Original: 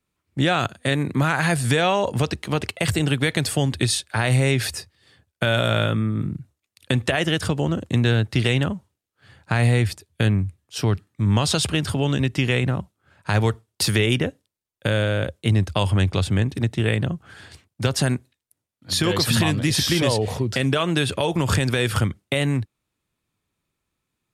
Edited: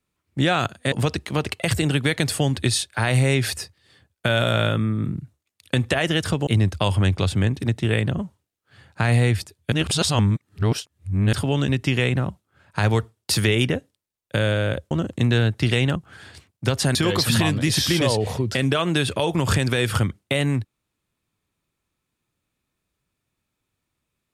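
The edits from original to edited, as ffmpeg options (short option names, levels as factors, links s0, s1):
-filter_complex "[0:a]asplit=9[s0][s1][s2][s3][s4][s5][s6][s7][s8];[s0]atrim=end=0.922[s9];[s1]atrim=start=2.088:end=7.642[s10];[s2]atrim=start=15.418:end=17.132[s11];[s3]atrim=start=8.688:end=10.232[s12];[s4]atrim=start=10.228:end=11.842,asetpts=PTS-STARTPTS,areverse[s13];[s5]atrim=start=11.838:end=15.422[s14];[s6]atrim=start=7.638:end=8.692[s15];[s7]atrim=start=17.128:end=18.122[s16];[s8]atrim=start=18.958[s17];[s9][s10]acrossfade=d=0.004:c1=hsin:c2=hsin[s18];[s18][s11]acrossfade=d=0.004:c1=hsin:c2=hsin[s19];[s19][s12]acrossfade=d=0.004:c1=hsin:c2=hsin[s20];[s20][s13]acrossfade=d=0.004:c1=hsin:c2=hsin[s21];[s21][s14]acrossfade=d=0.004:c1=hsin:c2=hsin[s22];[s22][s15]acrossfade=d=0.004:c1=hsin:c2=hsin[s23];[s23][s16]acrossfade=d=0.004:c1=hsin:c2=hsin[s24];[s24][s17]acrossfade=d=0.004:c1=hsin:c2=hsin"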